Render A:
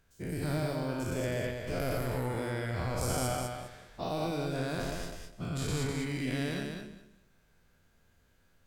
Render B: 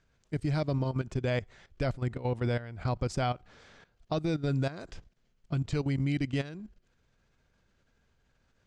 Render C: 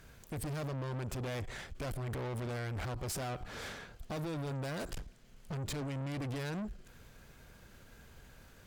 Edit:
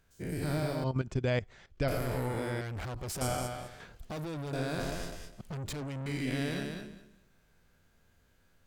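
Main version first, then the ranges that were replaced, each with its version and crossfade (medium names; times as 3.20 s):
A
0.84–1.88 s: from B
2.61–3.21 s: from C
3.80–4.53 s: from C
5.41–6.06 s: from C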